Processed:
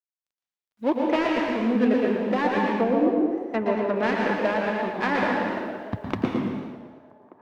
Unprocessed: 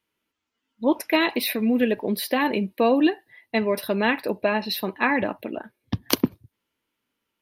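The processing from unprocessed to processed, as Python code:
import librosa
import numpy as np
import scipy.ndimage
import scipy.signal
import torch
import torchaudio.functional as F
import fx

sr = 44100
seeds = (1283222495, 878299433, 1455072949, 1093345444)

y = fx.dead_time(x, sr, dead_ms=0.15)
y = scipy.signal.sosfilt(scipy.signal.butter(2, 2000.0, 'lowpass', fs=sr, output='sos'), y)
y = fx.quant_dither(y, sr, seeds[0], bits=12, dither='none')
y = fx.low_shelf(y, sr, hz=470.0, db=-5.0)
y = fx.env_lowpass_down(y, sr, base_hz=460.0, full_db=-18.0, at=(2.69, 3.96))
y = fx.echo_wet_bandpass(y, sr, ms=1182, feedback_pct=31, hz=570.0, wet_db=-18.5)
y = fx.rev_plate(y, sr, seeds[1], rt60_s=1.2, hf_ratio=0.95, predelay_ms=110, drr_db=0.0)
y = fx.echo_warbled(y, sr, ms=114, feedback_pct=46, rate_hz=2.8, cents=130, wet_db=-7.0)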